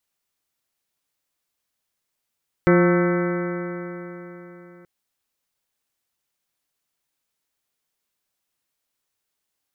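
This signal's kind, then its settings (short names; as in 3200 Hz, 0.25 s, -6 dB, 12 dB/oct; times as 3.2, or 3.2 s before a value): stretched partials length 2.18 s, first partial 174 Hz, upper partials 1.5/-3.5/-15.5/-16/-14/-9/-10/-16/-12/-19.5 dB, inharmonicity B 0.0034, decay 3.86 s, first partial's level -16 dB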